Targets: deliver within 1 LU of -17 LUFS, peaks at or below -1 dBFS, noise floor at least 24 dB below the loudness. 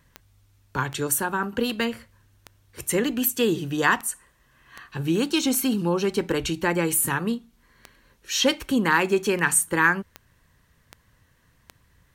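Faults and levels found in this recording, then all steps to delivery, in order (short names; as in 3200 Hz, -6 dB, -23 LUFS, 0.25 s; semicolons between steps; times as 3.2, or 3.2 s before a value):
clicks 16; loudness -23.5 LUFS; peak -5.0 dBFS; loudness target -17.0 LUFS
-> de-click; gain +6.5 dB; limiter -1 dBFS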